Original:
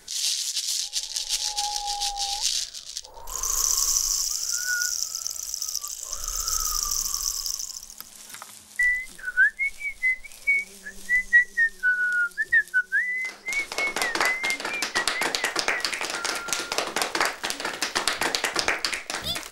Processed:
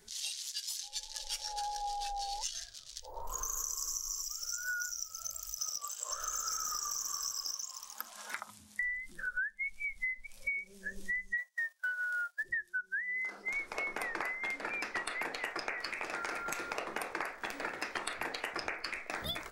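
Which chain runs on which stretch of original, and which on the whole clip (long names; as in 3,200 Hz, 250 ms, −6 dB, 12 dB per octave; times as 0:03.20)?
0:05.61–0:08.40: low-shelf EQ 390 Hz −6 dB + mid-hump overdrive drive 15 dB, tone 4,700 Hz, clips at −7.5 dBFS
0:11.37–0:12.42: spectral envelope flattened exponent 0.6 + Butterworth high-pass 530 Hz 72 dB per octave + noise gate −38 dBFS, range −12 dB
whole clip: mains-hum notches 60/120/180 Hz; noise reduction from a noise print of the clip's start 12 dB; downward compressor 6 to 1, threshold −35 dBFS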